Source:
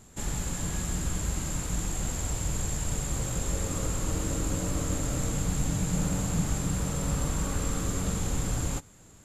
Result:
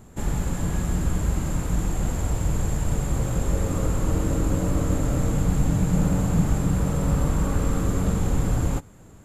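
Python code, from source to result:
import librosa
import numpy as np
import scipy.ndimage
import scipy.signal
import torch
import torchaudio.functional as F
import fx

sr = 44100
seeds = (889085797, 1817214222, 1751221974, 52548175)

y = fx.peak_eq(x, sr, hz=5900.0, db=-12.0, octaves=2.8)
y = F.gain(torch.from_numpy(y), 7.5).numpy()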